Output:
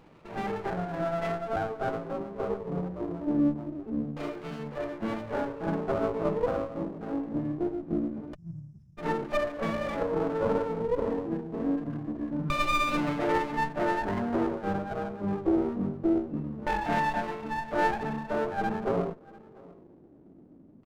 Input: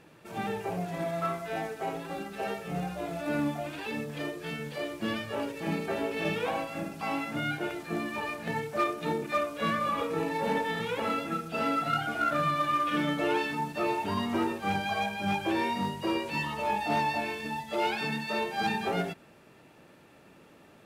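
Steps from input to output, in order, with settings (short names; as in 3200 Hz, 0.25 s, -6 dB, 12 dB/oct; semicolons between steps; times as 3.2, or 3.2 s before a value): LFO low-pass saw down 0.24 Hz 250–1500 Hz; on a send: echo 0.692 s -23 dB; on the sum: spectral delete 8.34–8.98, 210–5100 Hz; running maximum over 17 samples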